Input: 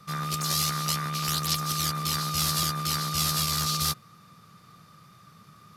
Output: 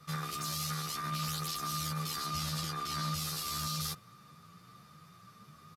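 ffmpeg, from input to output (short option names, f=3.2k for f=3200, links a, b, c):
-filter_complex "[0:a]asettb=1/sr,asplit=3[a][b][c];[a]atrim=end=2.254[d];[b]atrim=start=2.25:end=3.14,asetpts=PTS-STARTPTS,afade=t=in:d=0.004:c=qsin,afade=t=out:st=0.886:d=0.004:c=qsin,highshelf=f=7.9k:g=-9[e];[c]atrim=start=3.136[f];[d][e]acrossfade=d=0.004:c1=hsin:c2=qsin[g];[g][f]acrossfade=d=0.004:c1=qsin:c2=hsin,alimiter=level_in=0.5dB:limit=-24dB:level=0:latency=1:release=21,volume=-0.5dB,asplit=2[h][i];[i]adelay=10.1,afreqshift=1.6[j];[h][j]amix=inputs=2:normalize=1"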